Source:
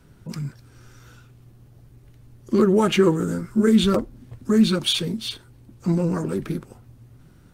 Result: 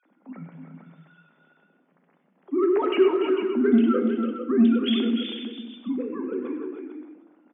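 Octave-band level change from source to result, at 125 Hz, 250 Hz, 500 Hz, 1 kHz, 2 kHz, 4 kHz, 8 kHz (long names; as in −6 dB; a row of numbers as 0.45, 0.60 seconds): below −15 dB, −1.5 dB, −0.5 dB, −2.5 dB, −4.0 dB, −7.5 dB, below −40 dB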